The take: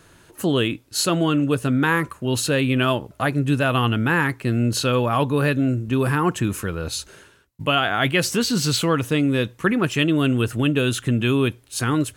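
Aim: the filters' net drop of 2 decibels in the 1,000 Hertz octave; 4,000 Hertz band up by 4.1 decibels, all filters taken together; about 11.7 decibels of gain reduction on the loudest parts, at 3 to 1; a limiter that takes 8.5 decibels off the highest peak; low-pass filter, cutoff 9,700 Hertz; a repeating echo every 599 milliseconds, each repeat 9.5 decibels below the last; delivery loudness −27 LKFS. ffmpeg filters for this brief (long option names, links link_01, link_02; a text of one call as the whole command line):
ffmpeg -i in.wav -af "lowpass=9700,equalizer=frequency=1000:width_type=o:gain=-3,equalizer=frequency=4000:width_type=o:gain=5.5,acompressor=threshold=-32dB:ratio=3,alimiter=level_in=1.5dB:limit=-24dB:level=0:latency=1,volume=-1.5dB,aecho=1:1:599|1198|1797|2396:0.335|0.111|0.0365|0.012,volume=7dB" out.wav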